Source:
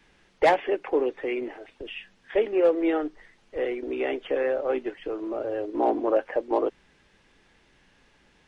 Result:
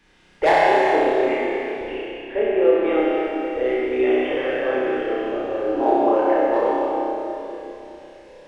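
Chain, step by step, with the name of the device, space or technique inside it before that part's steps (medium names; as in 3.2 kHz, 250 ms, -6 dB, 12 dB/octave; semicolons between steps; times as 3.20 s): 1.84–2.83 s: distance through air 350 m; tunnel (flutter echo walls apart 5.4 m, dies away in 0.93 s; reverberation RT60 3.2 s, pre-delay 63 ms, DRR -2 dB)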